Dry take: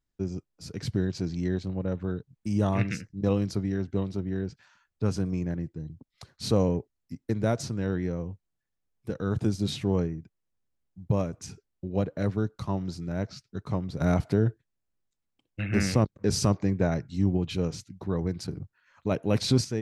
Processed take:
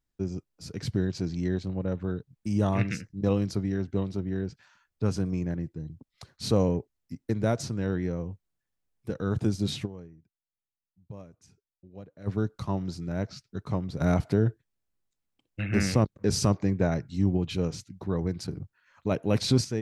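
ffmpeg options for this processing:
-filter_complex "[0:a]asplit=3[a][b][c];[a]atrim=end=9.97,asetpts=PTS-STARTPTS,afade=t=out:st=9.85:d=0.12:c=exp:silence=0.133352[d];[b]atrim=start=9.97:end=12.16,asetpts=PTS-STARTPTS,volume=-17.5dB[e];[c]atrim=start=12.16,asetpts=PTS-STARTPTS,afade=t=in:d=0.12:c=exp:silence=0.133352[f];[d][e][f]concat=n=3:v=0:a=1"

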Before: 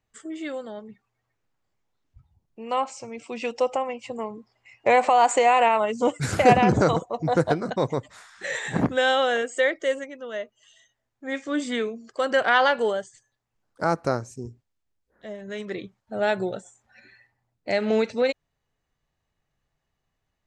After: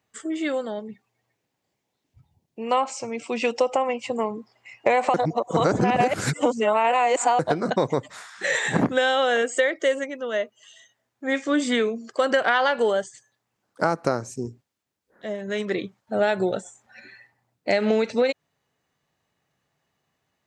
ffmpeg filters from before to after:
-filter_complex "[0:a]asettb=1/sr,asplit=3[a][b][c];[a]atrim=end=0.744[d];[b]atrim=start=0.74:end=2.62,asetpts=PTS-STARTPTS,afade=t=in:d=0.004:c=qsin,afade=t=out:st=1.876:d=0.004:c=qsin,equalizer=f=1.3k:w=2.2:g=-8.5[e];[c]atrim=start=2.616[f];[d][e]acrossfade=d=0.004:c1=hsin:c2=qsin[g];[g][f]acrossfade=d=0.004:c1=qsin:c2=hsin,asplit=3[h][i][j];[h]atrim=end=5.142[k];[i]atrim=start=5.138:end=7.392,asetpts=PTS-STARTPTS,areverse[l];[j]atrim=start=7.388[m];[k][l]acrossfade=d=0.004:c1=hsin:c2=hsin[n];[n][m]acrossfade=d=0.004:c1=hsin:c2=hsin,highpass=140,acompressor=threshold=-23dB:ratio=12,volume=6.5dB"

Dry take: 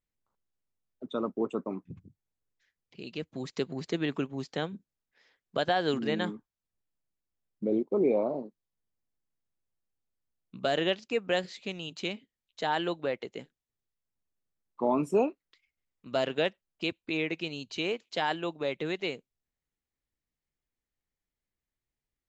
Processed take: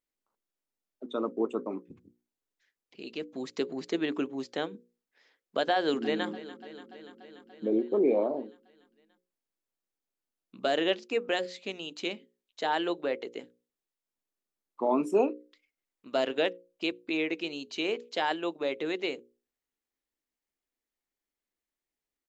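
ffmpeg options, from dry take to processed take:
-filter_complex "[0:a]asplit=2[a][b];[b]afade=t=in:st=5.75:d=0.01,afade=t=out:st=6.27:d=0.01,aecho=0:1:290|580|870|1160|1450|1740|2030|2320|2610|2900:0.158489|0.118867|0.0891502|0.0668627|0.050147|0.0376103|0.0282077|0.0211558|0.0158668|0.0119001[c];[a][c]amix=inputs=2:normalize=0,lowshelf=f=200:t=q:w=1.5:g=-10,bandreject=f=60:t=h:w=6,bandreject=f=120:t=h:w=6,bandreject=f=180:t=h:w=6,bandreject=f=240:t=h:w=6,bandreject=f=300:t=h:w=6,bandreject=f=360:t=h:w=6,bandreject=f=420:t=h:w=6,bandreject=f=480:t=h:w=6,bandreject=f=540:t=h:w=6"

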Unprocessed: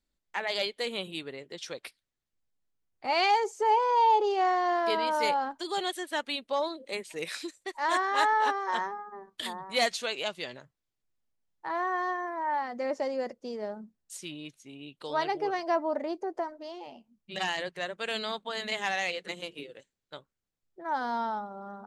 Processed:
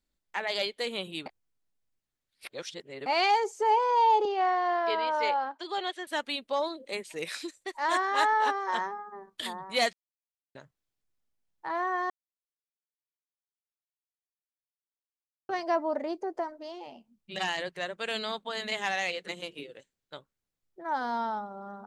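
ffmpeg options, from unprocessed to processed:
-filter_complex "[0:a]asettb=1/sr,asplit=3[a][b][c];[a]atrim=end=4.254[d];[b]atrim=start=4.25:end=6.07,asetpts=PTS-STARTPTS,afade=t=in:d=0.004:c=qsin,afade=t=out:st=1.816:d=0.004:c=qsin,highpass=390,lowpass=3.9k[e];[c]atrim=start=6.066[f];[d][e]acrossfade=d=0.004:c1=hsin:c2=qsin[g];[g][f]acrossfade=d=0.004:c1=qsin:c2=hsin,asettb=1/sr,asplit=3[h][i][j];[h]atrim=end=8.244[k];[i]atrim=start=8.24:end=9.16,asetpts=PTS-STARTPTS,afade=t=in:d=0.004:c=qsin,afade=t=out:st=0.916:d=0.004:c=qsin,highpass=59[l];[j]atrim=start=9.156[m];[k][l]acrossfade=d=0.004:c1=hsin:c2=qsin[n];[n][m]acrossfade=d=0.004:c1=qsin:c2=hsin,asplit=7[o][p][q][r][s][t][u];[o]atrim=end=1.262[v];[p]atrim=start=1.258:end=3.062,asetpts=PTS-STARTPTS,areverse[w];[q]atrim=start=3.058:end=9.93,asetpts=PTS-STARTPTS,afade=t=out:st=6.868:d=0.004:c=hsin[x];[r]atrim=start=9.93:end=10.55,asetpts=PTS-STARTPTS,volume=0[y];[s]atrim=start=10.55:end=12.1,asetpts=PTS-STARTPTS,afade=t=in:d=0.004:c=hsin,afade=t=out:st=1.546:d=0.004:c=hsin[z];[t]atrim=start=12.1:end=15.49,asetpts=PTS-STARTPTS,volume=0[aa];[u]atrim=start=15.49,asetpts=PTS-STARTPTS,afade=t=in:d=0.004:c=hsin[ab];[v][w]acrossfade=d=0.004:c1=hsin:c2=hsin[ac];[x][y][z][aa][ab]concat=n=5:v=0:a=1[ad];[ac][ad]acrossfade=d=0.004:c1=hsin:c2=hsin"

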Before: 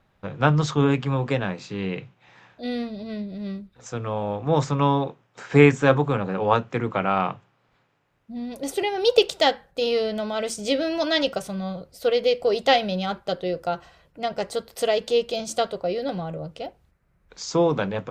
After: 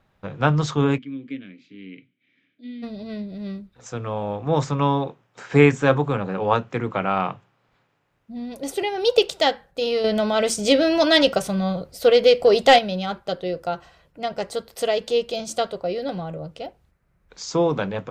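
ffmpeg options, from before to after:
-filter_complex "[0:a]asplit=3[a][b][c];[a]afade=t=out:st=0.97:d=0.02[d];[b]asplit=3[e][f][g];[e]bandpass=f=270:t=q:w=8,volume=0dB[h];[f]bandpass=f=2.29k:t=q:w=8,volume=-6dB[i];[g]bandpass=f=3.01k:t=q:w=8,volume=-9dB[j];[h][i][j]amix=inputs=3:normalize=0,afade=t=in:st=0.97:d=0.02,afade=t=out:st=2.82:d=0.02[k];[c]afade=t=in:st=2.82:d=0.02[l];[d][k][l]amix=inputs=3:normalize=0,asettb=1/sr,asplit=3[m][n][o];[m]atrim=end=10.044[p];[n]atrim=start=10.04:end=12.79,asetpts=PTS-STARTPTS,afade=t=in:d=0.004:c=qsin,afade=t=out:st=2.746:d=0.004:c=qsin,acontrast=70[q];[o]atrim=start=12.786[r];[p][q]acrossfade=d=0.004:c1=hsin:c2=qsin[s];[s][r]acrossfade=d=0.004:c1=qsin:c2=hsin"

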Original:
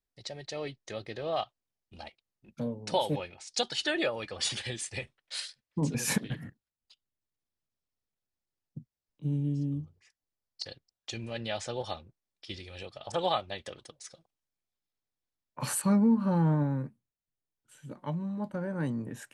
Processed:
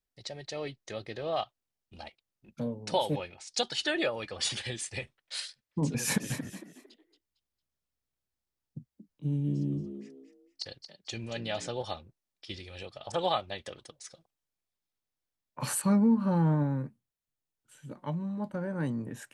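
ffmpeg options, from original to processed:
-filter_complex "[0:a]asettb=1/sr,asplit=3[a][b][c];[a]atrim=end=5.974[d];[b]atrim=start=5.97:end=11.7,asetpts=PTS-STARTPTS,afade=t=in:d=0.004:c=qsin,afade=t=out:st=5.726:d=0.004:c=qsin,asplit=4[e][f][g][h];[f]adelay=227,afreqshift=62,volume=-10dB[i];[g]adelay=454,afreqshift=124,volume=-20.2dB[j];[h]adelay=681,afreqshift=186,volume=-30.3dB[k];[e][i][j][k]amix=inputs=4:normalize=0,atrim=end_sample=252693[l];[c]atrim=start=11.696[m];[d][l]acrossfade=d=0.004:c1=hsin:c2=qsin[n];[n][m]acrossfade=d=0.004:c1=qsin:c2=hsin"

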